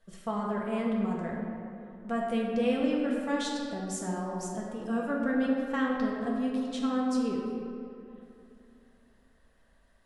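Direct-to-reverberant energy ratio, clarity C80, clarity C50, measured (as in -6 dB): -3.5 dB, 2.0 dB, 0.5 dB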